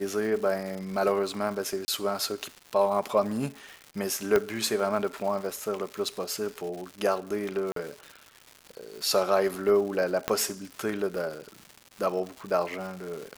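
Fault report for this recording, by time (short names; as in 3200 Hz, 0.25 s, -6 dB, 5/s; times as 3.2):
crackle 300/s -36 dBFS
1.85–1.88 gap 30 ms
4.36 pop -11 dBFS
7.72–7.76 gap 43 ms
10.28 pop -10 dBFS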